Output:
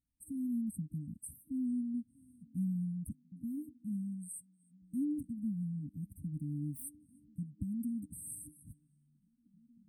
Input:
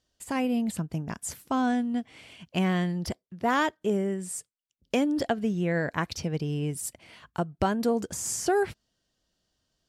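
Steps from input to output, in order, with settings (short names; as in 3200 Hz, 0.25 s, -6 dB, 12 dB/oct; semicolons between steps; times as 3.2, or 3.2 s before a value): 6.24–6.84 self-modulated delay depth 0.32 ms; delay with a stepping band-pass 0.307 s, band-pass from 3600 Hz, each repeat -0.7 oct, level -10 dB; FFT band-reject 310–8100 Hz; gain -8 dB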